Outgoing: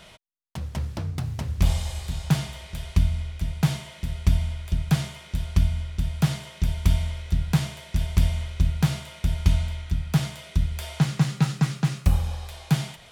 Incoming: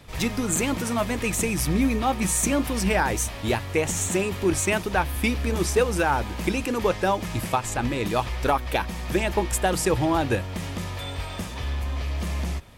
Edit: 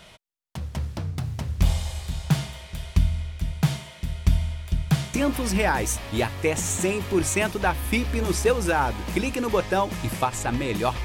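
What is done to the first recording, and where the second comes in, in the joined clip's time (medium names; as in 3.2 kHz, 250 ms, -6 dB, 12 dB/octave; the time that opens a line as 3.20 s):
outgoing
5.14 s: go over to incoming from 2.45 s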